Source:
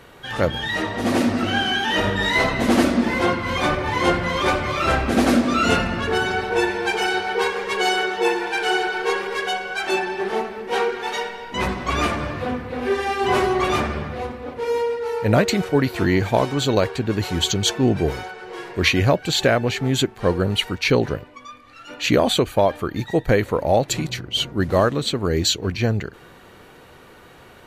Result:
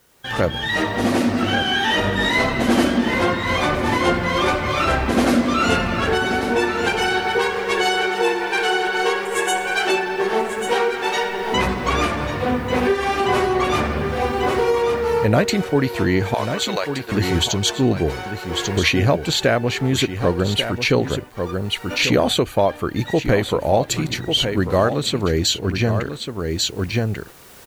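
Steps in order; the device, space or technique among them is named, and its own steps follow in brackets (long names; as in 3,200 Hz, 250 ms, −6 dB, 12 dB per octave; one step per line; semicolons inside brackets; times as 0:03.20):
0:16.34–0:17.12: Bessel high-pass filter 930 Hz, order 2
noise gate −37 dBFS, range −16 dB
0:09.25–0:09.75: high shelf with overshoot 6,200 Hz +8.5 dB, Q 3
single-tap delay 1,142 ms −10 dB
cheap recorder with automatic gain (white noise bed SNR 39 dB; camcorder AGC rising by 11 dB per second)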